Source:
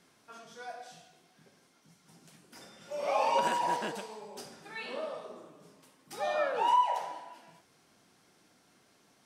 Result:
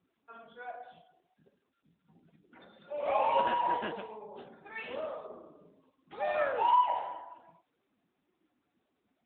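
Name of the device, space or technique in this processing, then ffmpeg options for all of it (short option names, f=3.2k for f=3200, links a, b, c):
mobile call with aggressive noise cancelling: -af "highpass=f=180:p=1,afftdn=nr=32:nf=-56,volume=1dB" -ar 8000 -c:a libopencore_amrnb -b:a 10200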